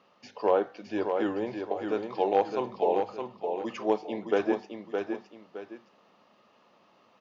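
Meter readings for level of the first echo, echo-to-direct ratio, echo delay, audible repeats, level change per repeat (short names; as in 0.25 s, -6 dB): -5.5 dB, -5.0 dB, 0.615 s, 2, -9.5 dB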